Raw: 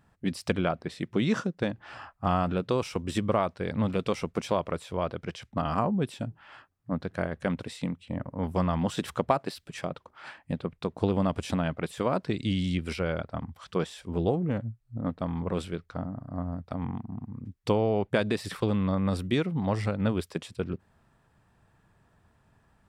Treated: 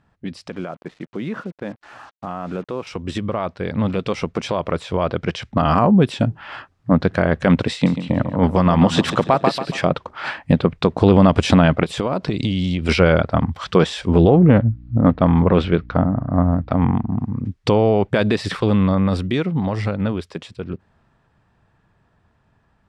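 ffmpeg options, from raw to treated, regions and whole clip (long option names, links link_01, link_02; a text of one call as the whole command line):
ffmpeg -i in.wav -filter_complex "[0:a]asettb=1/sr,asplit=3[link_01][link_02][link_03];[link_01]atrim=end=0.484[link_04];[link_02]atrim=start=0.48:end=2.87,asetpts=PTS-STARTPTS,afade=type=in:duration=0.004:curve=qsin,afade=type=out:start_time=2.386:duration=0.004:curve=qsin,highpass=160,lowpass=2300,acrusher=bits=7:mix=0:aa=0.5[link_05];[link_03]atrim=start=2.866[link_06];[link_04][link_05]acrossfade=duration=0.004:curve1=hsin:curve2=qsin[link_07];[link_07][link_06]acrossfade=duration=0.004:curve1=qsin:curve2=hsin,asettb=1/sr,asplit=3[link_08][link_09][link_10];[link_08]atrim=end=7.724[link_11];[link_09]atrim=start=7.72:end=9.81,asetpts=PTS-STARTPTS,afade=type=in:duration=0.004:curve=qsin,afade=type=out:start_time=2.086:duration=0.004:curve=qsin,highpass=83,tremolo=f=8.1:d=0.42,aecho=1:1:140|280|420|560:0.251|0.0929|0.0344|0.0127,atrim=end_sample=92169[link_12];[link_10]atrim=start=9.806[link_13];[link_11][link_12]acrossfade=duration=0.004:curve1=hsin:curve2=qsin[link_14];[link_14][link_13]acrossfade=duration=0.004:curve1=qsin:curve2=hsin,asettb=1/sr,asplit=3[link_15][link_16][link_17];[link_15]atrim=end=11.834[link_18];[link_16]atrim=start=11.83:end=12.89,asetpts=PTS-STARTPTS,afade=type=in:duration=0.004:curve=qsin,afade=type=out:start_time=1.056:duration=0.004:curve=qsin,equalizer=frequency=1700:width=2.5:gain=-5,acompressor=threshold=-34dB:ratio=10:attack=3.2:release=140:knee=1:detection=peak[link_19];[link_17]atrim=start=12.886[link_20];[link_18][link_19]acrossfade=duration=0.004:curve1=hsin:curve2=qsin[link_21];[link_21][link_20]acrossfade=duration=0.004:curve1=qsin:curve2=hsin,asettb=1/sr,asplit=3[link_22][link_23][link_24];[link_22]atrim=end=14.274[link_25];[link_23]atrim=start=14.27:end=17.09,asetpts=PTS-STARTPTS,afade=type=in:duration=0.004:curve=qsin,afade=type=out:start_time=2.816:duration=0.004:curve=qsin,lowpass=3300,aeval=exprs='val(0)+0.00158*(sin(2*PI*60*n/s)+sin(2*PI*2*60*n/s)/2+sin(2*PI*3*60*n/s)/3+sin(2*PI*4*60*n/s)/4+sin(2*PI*5*60*n/s)/5)':channel_layout=same[link_26];[link_24]atrim=start=17.086[link_27];[link_25][link_26]acrossfade=duration=0.004:curve1=hsin:curve2=qsin[link_28];[link_28][link_27]acrossfade=duration=0.004:curve1=qsin:curve2=hsin,alimiter=limit=-20.5dB:level=0:latency=1:release=62,dynaudnorm=framelen=330:gausssize=31:maxgain=15.5dB,lowpass=5500,volume=2.5dB" out.wav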